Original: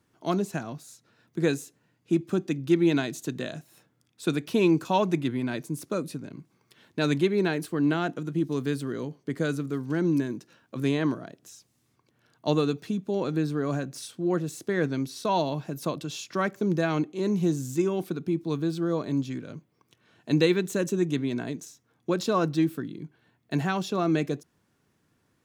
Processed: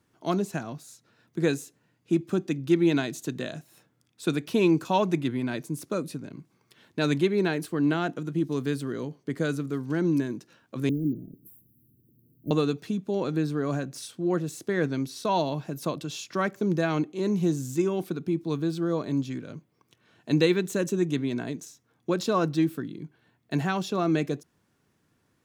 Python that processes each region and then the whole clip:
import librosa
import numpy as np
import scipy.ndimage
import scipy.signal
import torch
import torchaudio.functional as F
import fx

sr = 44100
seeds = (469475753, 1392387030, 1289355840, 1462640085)

y = fx.chain(x, sr, fx.law_mismatch(coded='mu'),
    fx.cheby2_bandstop(low_hz=960.0, high_hz=5700.0, order=4, stop_db=60),
    fx.high_shelf(hz=8700.0, db=8.5), at=(10.89, 12.51))